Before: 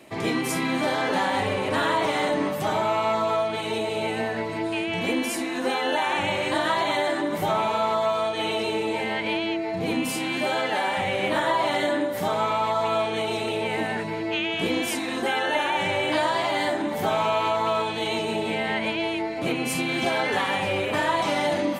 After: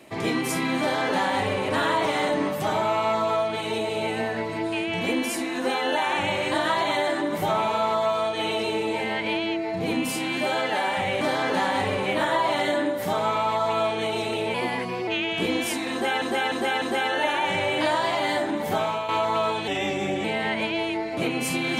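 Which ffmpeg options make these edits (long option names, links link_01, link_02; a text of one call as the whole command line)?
ffmpeg -i in.wav -filter_complex "[0:a]asplit=11[link_01][link_02][link_03][link_04][link_05][link_06][link_07][link_08][link_09][link_10][link_11];[link_01]atrim=end=11.212[link_12];[link_02]atrim=start=0.798:end=1.652[link_13];[link_03]atrim=start=11.208:end=13.694[link_14];[link_04]atrim=start=13.69:end=14.29,asetpts=PTS-STARTPTS,asetrate=49392,aresample=44100[link_15];[link_05]atrim=start=14.286:end=15.432[link_16];[link_06]atrim=start=15.128:end=15.432[link_17];[link_07]atrim=start=15.128:end=15.432[link_18];[link_08]atrim=start=15.128:end=17.4,asetpts=PTS-STARTPTS,afade=type=out:start_time=1.922:duration=0.35:silence=0.375837[link_19];[link_09]atrim=start=17.4:end=17.994,asetpts=PTS-STARTPTS,afade=type=in:duration=0.004:curve=hsin:silence=0.375837[link_20];[link_10]atrim=start=17.99:end=18.49,asetpts=PTS-STARTPTS,asetrate=38808,aresample=44100[link_21];[link_11]atrim=start=18.486[link_22];[link_12][link_13]acrossfade=duration=0.004:curve1=hsin:curve2=hsin[link_23];[link_23][link_14]acrossfade=duration=0.004:curve1=hsin:curve2=hsin[link_24];[link_24][link_15]acrossfade=duration=0.004:curve1=hsin:curve2=hsin[link_25];[link_25][link_16]acrossfade=duration=0.004:curve1=hsin:curve2=hsin[link_26];[link_26][link_17]acrossfade=duration=0.004:curve1=hsin:curve2=hsin[link_27];[link_27][link_18]acrossfade=duration=0.004:curve1=hsin:curve2=hsin[link_28];[link_19][link_20]concat=n=2:v=0:a=1[link_29];[link_28][link_29]acrossfade=duration=0.004:curve1=hsin:curve2=hsin[link_30];[link_30][link_21]acrossfade=duration=0.004:curve1=hsin:curve2=hsin[link_31];[link_31][link_22]acrossfade=duration=0.004:curve1=hsin:curve2=hsin" out.wav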